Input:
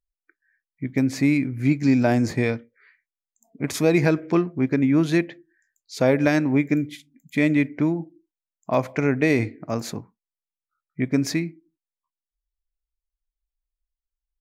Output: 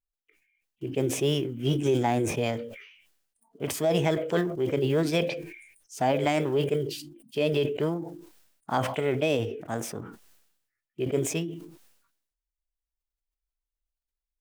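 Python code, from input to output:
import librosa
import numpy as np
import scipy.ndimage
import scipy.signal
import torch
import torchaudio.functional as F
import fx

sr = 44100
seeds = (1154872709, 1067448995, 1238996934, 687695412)

y = fx.block_float(x, sr, bits=7)
y = fx.formant_shift(y, sr, semitones=5)
y = fx.sustainer(y, sr, db_per_s=65.0)
y = y * 10.0 ** (-6.0 / 20.0)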